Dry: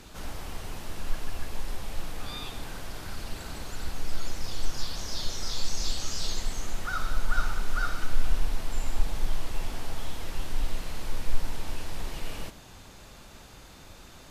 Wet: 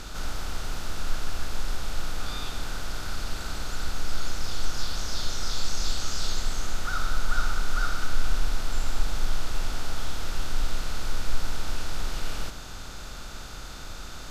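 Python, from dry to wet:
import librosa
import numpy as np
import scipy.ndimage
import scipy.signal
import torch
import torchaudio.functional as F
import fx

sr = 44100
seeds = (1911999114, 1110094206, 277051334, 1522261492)

y = fx.bin_compress(x, sr, power=0.6)
y = y * 10.0 ** (-1.5 / 20.0)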